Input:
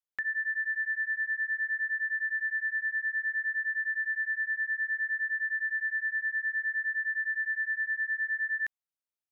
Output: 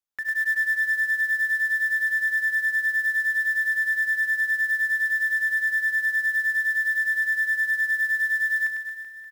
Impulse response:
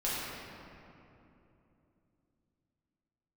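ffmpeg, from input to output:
-filter_complex "[0:a]aecho=1:1:100|225|381.2|576.6|820.7:0.631|0.398|0.251|0.158|0.1,asplit=2[a][b];[1:a]atrim=start_sample=2205[c];[b][c]afir=irnorm=-1:irlink=0,volume=-17dB[d];[a][d]amix=inputs=2:normalize=0,acrusher=bits=5:mode=log:mix=0:aa=0.000001"

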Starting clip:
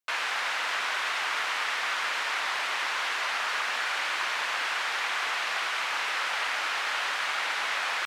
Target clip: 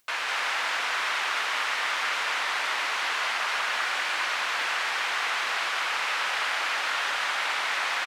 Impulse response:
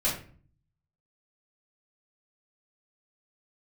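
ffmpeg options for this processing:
-filter_complex "[0:a]acompressor=mode=upward:threshold=-53dB:ratio=2.5,asplit=2[a][b];[b]aecho=0:1:199:0.708[c];[a][c]amix=inputs=2:normalize=0"

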